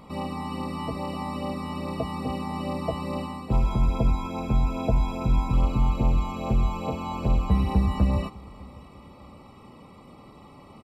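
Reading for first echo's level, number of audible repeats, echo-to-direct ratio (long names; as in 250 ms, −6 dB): −23.0 dB, 2, −22.5 dB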